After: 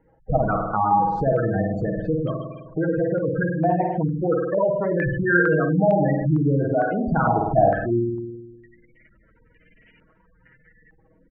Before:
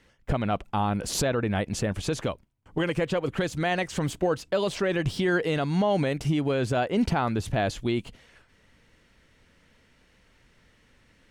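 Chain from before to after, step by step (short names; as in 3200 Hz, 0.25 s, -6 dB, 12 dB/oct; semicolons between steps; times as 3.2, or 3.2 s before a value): comb 6.3 ms, depth 43%; spring tank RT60 1.3 s, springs 51 ms, chirp 60 ms, DRR -0.5 dB; spectral gate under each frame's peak -15 dB strong; stepped low-pass 2.2 Hz 790–2500 Hz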